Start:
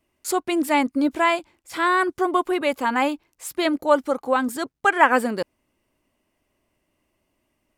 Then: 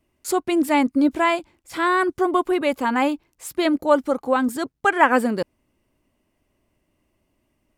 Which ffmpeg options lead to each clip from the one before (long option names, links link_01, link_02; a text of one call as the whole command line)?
ffmpeg -i in.wav -af "lowshelf=frequency=350:gain=7,volume=-1dB" out.wav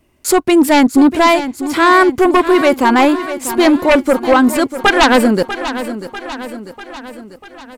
ffmpeg -i in.wav -filter_complex "[0:a]aeval=exprs='0.841*sin(PI/2*3.55*val(0)/0.841)':channel_layout=same,asplit=2[link_01][link_02];[link_02]aecho=0:1:644|1288|1932|2576|3220|3864:0.251|0.141|0.0788|0.0441|0.0247|0.0138[link_03];[link_01][link_03]amix=inputs=2:normalize=0,volume=-3dB" out.wav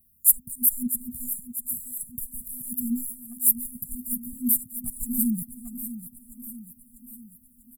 ffmpeg -i in.wav -filter_complex "[0:a]afftfilt=real='re*(1-between(b*sr/4096,250,7000))':imag='im*(1-between(b*sr/4096,250,7000))':win_size=4096:overlap=0.75,asplit=2[link_01][link_02];[link_02]adelay=390,highpass=300,lowpass=3400,asoftclip=type=hard:threshold=-14.5dB,volume=-11dB[link_03];[link_01][link_03]amix=inputs=2:normalize=0,aexciter=amount=12.8:drive=5.8:freq=10000,volume=-11.5dB" out.wav